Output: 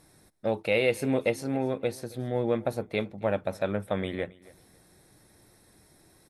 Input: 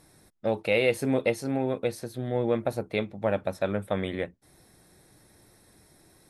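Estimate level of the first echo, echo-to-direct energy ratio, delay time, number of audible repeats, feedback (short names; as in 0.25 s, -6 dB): -22.0 dB, -22.0 dB, 0.272 s, 2, 23%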